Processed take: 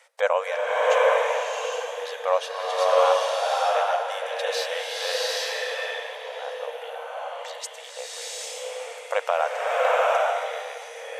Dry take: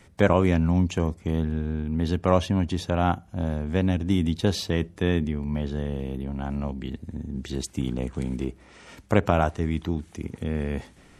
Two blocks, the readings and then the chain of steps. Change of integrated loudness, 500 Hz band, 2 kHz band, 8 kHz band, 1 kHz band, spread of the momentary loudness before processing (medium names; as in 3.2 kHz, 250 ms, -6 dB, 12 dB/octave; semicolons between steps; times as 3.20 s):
+1.0 dB, +5.0 dB, +7.5 dB, +7.5 dB, +7.5 dB, 11 LU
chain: brick-wall FIR high-pass 460 Hz; swelling reverb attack 800 ms, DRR -6.5 dB